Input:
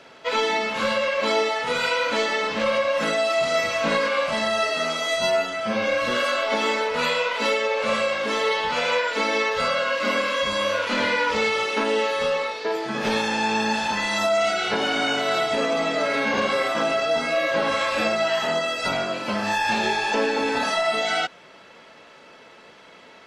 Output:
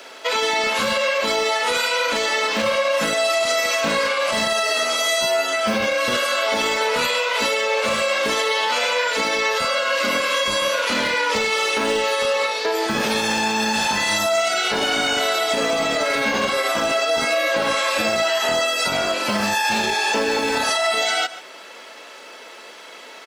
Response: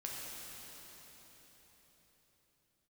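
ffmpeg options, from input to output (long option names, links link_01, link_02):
-filter_complex "[0:a]highpass=57,aemphasis=mode=production:type=50fm,aecho=1:1:136:0.0891,acrossover=split=250|1400|4300[link_01][link_02][link_03][link_04];[link_01]acrusher=bits=5:mix=0:aa=0.000001[link_05];[link_05][link_02][link_03][link_04]amix=inputs=4:normalize=0,alimiter=limit=-18.5dB:level=0:latency=1:release=105,volume=7dB"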